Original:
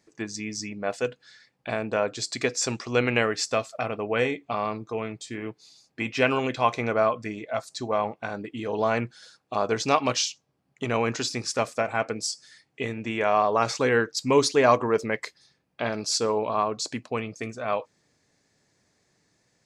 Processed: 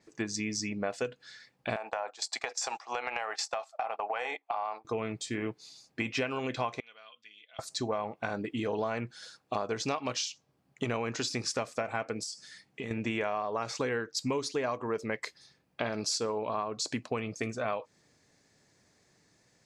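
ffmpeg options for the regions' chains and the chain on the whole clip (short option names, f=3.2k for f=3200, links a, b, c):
-filter_complex "[0:a]asettb=1/sr,asplit=3[a][b][c];[a]atrim=end=1.764[d];[b]atrim=start=1.76:end=4.85,asetpts=PTS-STARTPTS,afade=t=in:d=0.004:c=qsin,afade=t=out:st=3.086:d=0.004:c=qsin,agate=range=-16dB:threshold=-34dB:ratio=16:release=100:detection=peak,highpass=f=800:t=q:w=5.3,acompressor=threshold=-30dB:ratio=4:attack=3.2:release=140:knee=1:detection=peak[e];[c]atrim=start=4.846[f];[d][e]acrossfade=d=0.004:c1=hsin:c2=qsin[g];[g][f]acrossfade=d=0.004:c1=qsin:c2=hsin,asettb=1/sr,asplit=3[h][i][j];[h]atrim=end=6.804[k];[i]atrim=start=6.8:end=7.59,asetpts=PTS-STARTPTS,afade=t=in:d=0.004:c=qsin,afade=t=out:st=0.786:d=0.004:c=qsin,aecho=1:1:4.1:0.32,atrim=end_sample=34839,acompressor=threshold=-33dB:ratio=1.5:attack=3.2:release=140:knee=1:detection=peak,bandpass=f=3.2k:t=q:w=7.5[l];[j]atrim=start=7.586[m];[k][l]acrossfade=d=0.004:c1=hsin:c2=qsin[n];[n][m]acrossfade=d=0.004:c1=qsin:c2=hsin,asettb=1/sr,asplit=3[o][p][q];[o]atrim=end=12.234[r];[p]atrim=start=12.23:end=12.91,asetpts=PTS-STARTPTS,afade=t=in:d=0.004:c=qsin,afade=t=out:st=0.676:d=0.004:c=qsin,acompressor=threshold=-37dB:ratio=5:attack=3.2:release=140:knee=1:detection=peak,equalizer=f=200:w=4.1:g=7.5[s];[q]atrim=start=12.906[t];[r][s]acrossfade=d=0.004:c1=hsin:c2=qsin[u];[u][t]acrossfade=d=0.004:c1=qsin:c2=hsin,acompressor=threshold=-30dB:ratio=12,adynamicequalizer=threshold=0.00282:dfrequency=7800:dqfactor=0.7:tfrequency=7800:tqfactor=0.7:attack=5:release=100:ratio=0.375:range=2:mode=cutabove:tftype=highshelf,volume=1.5dB"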